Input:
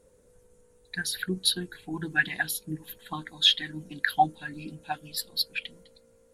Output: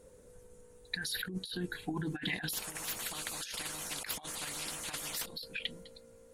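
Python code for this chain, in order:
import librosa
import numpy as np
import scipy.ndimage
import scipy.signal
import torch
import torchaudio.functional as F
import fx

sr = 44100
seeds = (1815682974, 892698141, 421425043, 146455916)

y = fx.over_compress(x, sr, threshold_db=-36.0, ratio=-1.0)
y = fx.spectral_comp(y, sr, ratio=10.0, at=(2.53, 5.26))
y = y * 10.0 ** (-2.5 / 20.0)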